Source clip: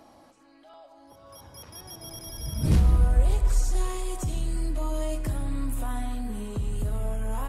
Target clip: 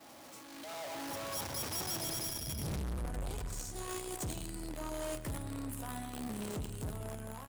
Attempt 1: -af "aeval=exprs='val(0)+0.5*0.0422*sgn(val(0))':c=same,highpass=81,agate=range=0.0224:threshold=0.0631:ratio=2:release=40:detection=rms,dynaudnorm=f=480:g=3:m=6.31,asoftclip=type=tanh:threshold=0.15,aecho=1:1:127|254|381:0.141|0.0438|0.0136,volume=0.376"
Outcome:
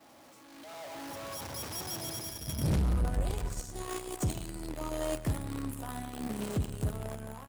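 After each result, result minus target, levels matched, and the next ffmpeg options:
8 kHz band -4.5 dB; saturation: distortion -5 dB
-af "aeval=exprs='val(0)+0.5*0.0422*sgn(val(0))':c=same,highpass=81,highshelf=f=3100:g=4,agate=range=0.0224:threshold=0.0631:ratio=2:release=40:detection=rms,dynaudnorm=f=480:g=3:m=6.31,asoftclip=type=tanh:threshold=0.15,aecho=1:1:127|254|381:0.141|0.0438|0.0136,volume=0.376"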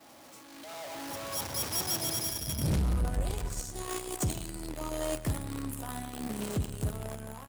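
saturation: distortion -6 dB
-af "aeval=exprs='val(0)+0.5*0.0422*sgn(val(0))':c=same,highpass=81,highshelf=f=3100:g=4,agate=range=0.0224:threshold=0.0631:ratio=2:release=40:detection=rms,dynaudnorm=f=480:g=3:m=6.31,asoftclip=type=tanh:threshold=0.0422,aecho=1:1:127|254|381:0.141|0.0438|0.0136,volume=0.376"

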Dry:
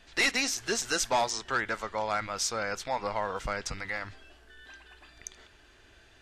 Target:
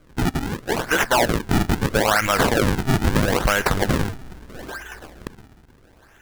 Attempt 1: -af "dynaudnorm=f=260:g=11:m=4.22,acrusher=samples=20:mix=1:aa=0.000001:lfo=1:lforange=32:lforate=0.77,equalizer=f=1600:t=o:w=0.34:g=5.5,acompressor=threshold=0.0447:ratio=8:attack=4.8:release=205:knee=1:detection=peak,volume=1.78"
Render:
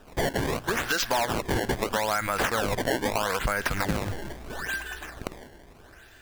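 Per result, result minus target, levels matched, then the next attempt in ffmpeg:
compression: peak gain reduction +8 dB; decimation with a swept rate: distortion -10 dB
-af "dynaudnorm=f=260:g=11:m=4.22,acrusher=samples=20:mix=1:aa=0.000001:lfo=1:lforange=32:lforate=0.77,equalizer=f=1600:t=o:w=0.34:g=5.5,acompressor=threshold=0.133:ratio=8:attack=4.8:release=205:knee=1:detection=peak,volume=1.78"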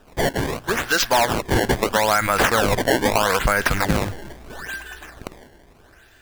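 decimation with a swept rate: distortion -10 dB
-af "dynaudnorm=f=260:g=11:m=4.22,acrusher=samples=47:mix=1:aa=0.000001:lfo=1:lforange=75.2:lforate=0.77,equalizer=f=1600:t=o:w=0.34:g=5.5,acompressor=threshold=0.133:ratio=8:attack=4.8:release=205:knee=1:detection=peak,volume=1.78"

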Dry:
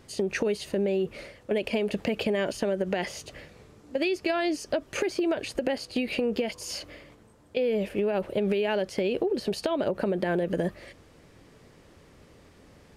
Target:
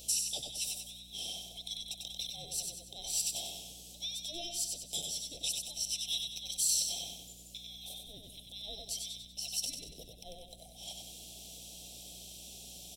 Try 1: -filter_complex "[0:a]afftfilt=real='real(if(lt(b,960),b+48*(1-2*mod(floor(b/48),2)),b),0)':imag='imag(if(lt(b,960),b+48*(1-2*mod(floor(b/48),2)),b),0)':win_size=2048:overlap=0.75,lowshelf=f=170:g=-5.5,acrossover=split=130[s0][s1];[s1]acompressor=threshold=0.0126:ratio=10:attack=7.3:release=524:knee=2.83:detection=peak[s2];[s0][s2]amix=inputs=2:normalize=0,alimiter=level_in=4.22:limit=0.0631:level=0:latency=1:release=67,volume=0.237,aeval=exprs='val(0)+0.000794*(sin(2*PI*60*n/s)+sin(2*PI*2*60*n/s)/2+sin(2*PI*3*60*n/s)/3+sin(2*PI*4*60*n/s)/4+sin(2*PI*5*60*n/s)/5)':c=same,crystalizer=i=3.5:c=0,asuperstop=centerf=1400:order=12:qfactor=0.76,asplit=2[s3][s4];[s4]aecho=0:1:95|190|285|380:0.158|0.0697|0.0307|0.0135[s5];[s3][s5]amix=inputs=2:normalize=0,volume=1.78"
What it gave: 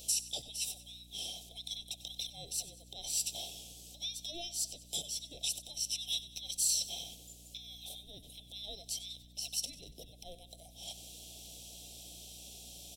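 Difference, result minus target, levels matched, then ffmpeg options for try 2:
echo-to-direct -11.5 dB
-filter_complex "[0:a]afftfilt=real='real(if(lt(b,960),b+48*(1-2*mod(floor(b/48),2)),b),0)':imag='imag(if(lt(b,960),b+48*(1-2*mod(floor(b/48),2)),b),0)':win_size=2048:overlap=0.75,lowshelf=f=170:g=-5.5,acrossover=split=130[s0][s1];[s1]acompressor=threshold=0.0126:ratio=10:attack=7.3:release=524:knee=2.83:detection=peak[s2];[s0][s2]amix=inputs=2:normalize=0,alimiter=level_in=4.22:limit=0.0631:level=0:latency=1:release=67,volume=0.237,aeval=exprs='val(0)+0.000794*(sin(2*PI*60*n/s)+sin(2*PI*2*60*n/s)/2+sin(2*PI*3*60*n/s)/3+sin(2*PI*4*60*n/s)/4+sin(2*PI*5*60*n/s)/5)':c=same,crystalizer=i=3.5:c=0,asuperstop=centerf=1400:order=12:qfactor=0.76,asplit=2[s3][s4];[s4]aecho=0:1:95|190|285|380|475:0.596|0.262|0.115|0.0507|0.0223[s5];[s3][s5]amix=inputs=2:normalize=0,volume=1.78"

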